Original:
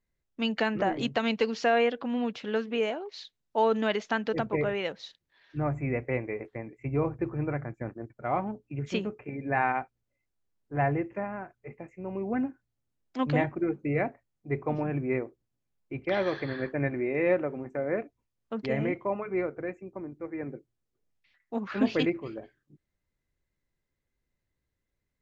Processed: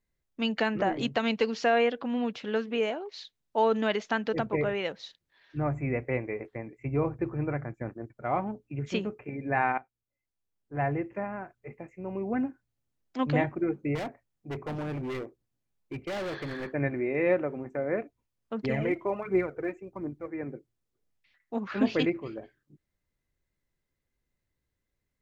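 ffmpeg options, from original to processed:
ffmpeg -i in.wav -filter_complex "[0:a]asettb=1/sr,asplit=3[link_01][link_02][link_03];[link_01]atrim=end=13.954[link_04];[link_02]atrim=start=13.95:end=16.7,asetpts=PTS-STARTPTS,afade=type=in:duration=0.004:curve=qsin,afade=type=out:start_time=2.746:duration=0.004:curve=qsin,asoftclip=type=hard:threshold=-31.5dB[link_05];[link_03]atrim=start=16.696[link_06];[link_04][link_05]acrossfade=duration=0.004:curve1=hsin:curve2=qsin[link_07];[link_07][link_06]acrossfade=duration=0.004:curve1=qsin:curve2=hsin,asettb=1/sr,asplit=3[link_08][link_09][link_10];[link_08]atrim=end=18.644[link_11];[link_09]atrim=start=18.64:end=20.28,asetpts=PTS-STARTPTS,afade=type=in:duration=0.004:curve=qsin,afade=type=out:start_time=1.636:duration=0.004:curve=qsin,aphaser=in_gain=1:out_gain=1:delay=3.3:decay=0.5:speed=1.4:type=triangular[link_12];[link_10]atrim=start=20.276[link_13];[link_11][link_12]acrossfade=duration=0.004:curve1=hsin:curve2=qsin[link_14];[link_14][link_13]acrossfade=duration=0.004:curve1=qsin:curve2=hsin,asplit=2[link_15][link_16];[link_15]atrim=end=9.78,asetpts=PTS-STARTPTS,afade=type=out:start_time=9.776:duration=0.004:curve=hsin:silence=0.158489[link_17];[link_16]atrim=start=9.78,asetpts=PTS-STARTPTS,afade=type=in:duration=1.5:silence=0.158489[link_18];[link_17][link_18]concat=n=2:v=0:a=1" out.wav

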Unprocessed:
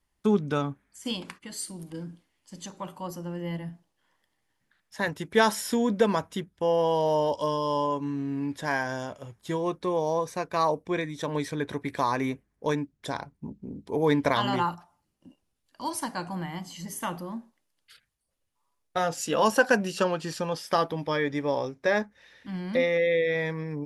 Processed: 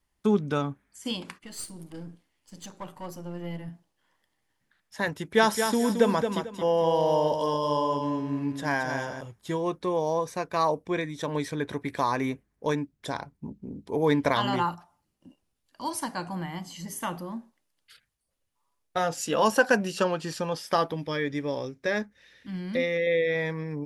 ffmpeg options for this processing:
ffmpeg -i in.wav -filter_complex "[0:a]asettb=1/sr,asplit=3[link_01][link_02][link_03];[link_01]atrim=end=1.434[link_04];[link_02]atrim=start=1.43:end=3.68,asetpts=PTS-STARTPTS,afade=type=in:duration=0.004:curve=qsin,afade=type=out:start_time=2.246:duration=0.004:curve=qsin,aeval=exprs='if(lt(val(0),0),0.447*val(0),val(0))':channel_layout=same[link_05];[link_03]atrim=start=3.676[link_06];[link_04][link_05]acrossfade=duration=0.004:curve1=hsin:curve2=qsin[link_07];[link_07][link_06]acrossfade=duration=0.004:curve1=qsin:curve2=hsin,asettb=1/sr,asplit=3[link_08][link_09][link_10];[link_08]atrim=end=5.154[link_11];[link_09]atrim=start=5.15:end=9.21,asetpts=PTS-STARTPTS,afade=type=in:duration=0.004:curve=qsin,afade=type=out:start_time=4.056:duration=0.004:curve=qsin,aecho=1:1:222|444|666:0.473|0.128|0.0345,atrim=end_sample=179046[link_12];[link_10]atrim=start=9.206[link_13];[link_11][link_12]acrossfade=duration=0.004:curve1=hsin:curve2=qsin[link_14];[link_14][link_13]acrossfade=duration=0.004:curve1=qsin:curve2=hsin,asettb=1/sr,asplit=3[link_15][link_16][link_17];[link_15]atrim=end=20.944[link_18];[link_16]atrim=start=20.94:end=23.07,asetpts=PTS-STARTPTS,afade=type=in:duration=0.004:curve=qsin,afade=type=out:start_time=2.126:duration=0.004:curve=qsin,equalizer=frequency=850:width_type=o:width=1.2:gain=-8[link_19];[link_17]atrim=start=23.066[link_20];[link_18][link_19]acrossfade=duration=0.004:curve1=hsin:curve2=qsin[link_21];[link_21][link_20]acrossfade=duration=0.004:curve1=qsin:curve2=hsin" out.wav

